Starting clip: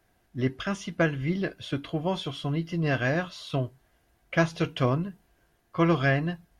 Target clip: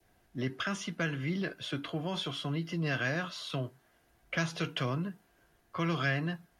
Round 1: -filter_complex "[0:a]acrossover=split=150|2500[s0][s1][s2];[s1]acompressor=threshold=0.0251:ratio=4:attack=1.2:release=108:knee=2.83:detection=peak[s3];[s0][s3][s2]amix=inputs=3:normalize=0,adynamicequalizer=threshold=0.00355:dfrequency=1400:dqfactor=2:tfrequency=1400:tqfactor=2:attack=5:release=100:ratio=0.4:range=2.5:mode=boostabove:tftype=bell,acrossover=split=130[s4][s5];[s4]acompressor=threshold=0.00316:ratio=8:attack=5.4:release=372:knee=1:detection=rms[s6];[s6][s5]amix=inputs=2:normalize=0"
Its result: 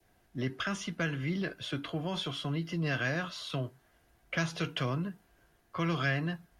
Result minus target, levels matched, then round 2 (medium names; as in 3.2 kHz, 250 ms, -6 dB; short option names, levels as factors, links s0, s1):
compression: peak gain reduction -8 dB
-filter_complex "[0:a]acrossover=split=150|2500[s0][s1][s2];[s1]acompressor=threshold=0.0251:ratio=4:attack=1.2:release=108:knee=2.83:detection=peak[s3];[s0][s3][s2]amix=inputs=3:normalize=0,adynamicequalizer=threshold=0.00355:dfrequency=1400:dqfactor=2:tfrequency=1400:tqfactor=2:attack=5:release=100:ratio=0.4:range=2.5:mode=boostabove:tftype=bell,acrossover=split=130[s4][s5];[s4]acompressor=threshold=0.00112:ratio=8:attack=5.4:release=372:knee=1:detection=rms[s6];[s6][s5]amix=inputs=2:normalize=0"